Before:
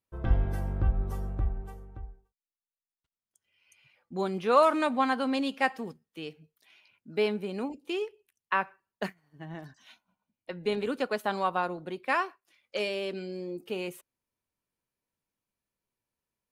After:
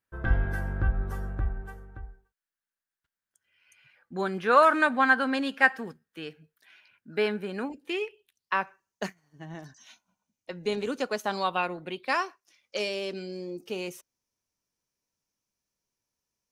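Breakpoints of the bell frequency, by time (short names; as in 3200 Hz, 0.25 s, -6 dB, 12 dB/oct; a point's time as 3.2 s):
bell +14 dB 0.49 oct
7.81 s 1600 Hz
8.61 s 6200 Hz
11.29 s 6200 Hz
11.77 s 1700 Hz
12.16 s 5800 Hz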